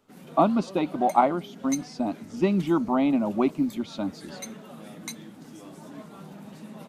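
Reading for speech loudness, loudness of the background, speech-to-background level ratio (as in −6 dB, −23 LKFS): −25.5 LKFS, −42.5 LKFS, 17.0 dB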